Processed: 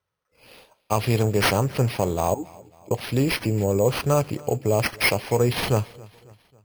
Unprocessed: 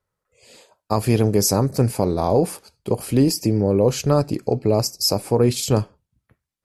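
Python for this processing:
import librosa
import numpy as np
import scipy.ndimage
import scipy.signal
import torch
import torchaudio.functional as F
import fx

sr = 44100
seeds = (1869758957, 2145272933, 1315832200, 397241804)

p1 = scipy.signal.sosfilt(scipy.signal.butter(2, 63.0, 'highpass', fs=sr, output='sos'), x)
p2 = fx.peak_eq(p1, sr, hz=260.0, db=-7.5, octaves=1.4)
p3 = fx.vowel_filter(p2, sr, vowel='u', at=(2.34, 2.91))
p4 = p3 + fx.echo_feedback(p3, sr, ms=273, feedback_pct=50, wet_db=-23, dry=0)
y = np.repeat(p4[::6], 6)[:len(p4)]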